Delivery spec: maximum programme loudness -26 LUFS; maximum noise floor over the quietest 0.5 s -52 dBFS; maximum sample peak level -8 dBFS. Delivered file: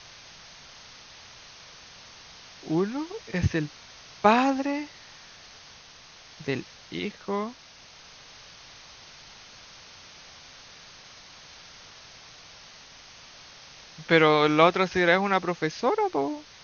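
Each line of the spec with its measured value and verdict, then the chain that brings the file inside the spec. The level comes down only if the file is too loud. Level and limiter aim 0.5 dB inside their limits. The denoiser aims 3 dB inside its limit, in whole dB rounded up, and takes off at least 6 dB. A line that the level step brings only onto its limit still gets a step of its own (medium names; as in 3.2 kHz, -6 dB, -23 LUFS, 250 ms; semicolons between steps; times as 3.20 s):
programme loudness -25.0 LUFS: fail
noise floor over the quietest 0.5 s -50 dBFS: fail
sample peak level -4.0 dBFS: fail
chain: noise reduction 6 dB, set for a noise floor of -50 dBFS; trim -1.5 dB; peak limiter -8.5 dBFS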